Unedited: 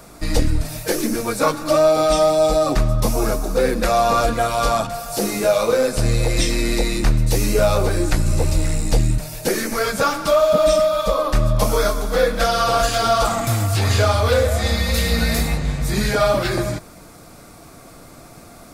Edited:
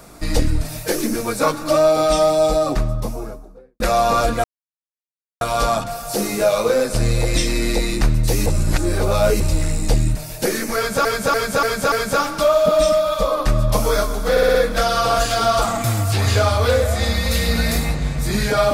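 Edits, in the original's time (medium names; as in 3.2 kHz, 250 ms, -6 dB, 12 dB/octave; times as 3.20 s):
2.37–3.80 s: studio fade out
4.44 s: insert silence 0.97 s
7.49–8.43 s: reverse
9.79–10.08 s: loop, 5 plays
12.18 s: stutter 0.06 s, 5 plays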